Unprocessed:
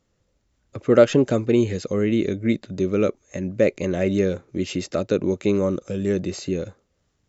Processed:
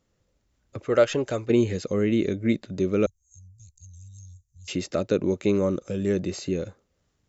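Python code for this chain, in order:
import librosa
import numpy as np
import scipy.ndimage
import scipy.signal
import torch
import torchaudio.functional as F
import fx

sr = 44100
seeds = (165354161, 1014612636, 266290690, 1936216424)

y = fx.peak_eq(x, sr, hz=210.0, db=-11.5, octaves=1.7, at=(0.85, 1.5))
y = fx.cheby2_bandstop(y, sr, low_hz=290.0, high_hz=1900.0, order=4, stop_db=70, at=(3.06, 4.68))
y = y * librosa.db_to_amplitude(-2.0)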